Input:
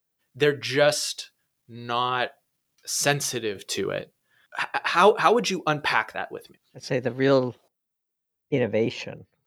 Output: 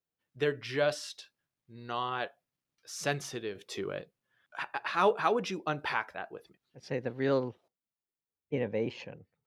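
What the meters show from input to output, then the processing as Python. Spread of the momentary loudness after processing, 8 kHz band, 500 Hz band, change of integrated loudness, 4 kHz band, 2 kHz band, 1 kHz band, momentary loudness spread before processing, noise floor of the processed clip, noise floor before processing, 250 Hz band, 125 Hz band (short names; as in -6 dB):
15 LU, -15.0 dB, -8.5 dB, -9.0 dB, -12.0 dB, -9.5 dB, -9.0 dB, 16 LU, under -85 dBFS, -82 dBFS, -8.5 dB, -8.5 dB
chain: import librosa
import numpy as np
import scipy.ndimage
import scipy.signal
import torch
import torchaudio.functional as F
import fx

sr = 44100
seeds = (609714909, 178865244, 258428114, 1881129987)

y = fx.high_shelf(x, sr, hz=5400.0, db=-11.0)
y = F.gain(torch.from_numpy(y), -8.5).numpy()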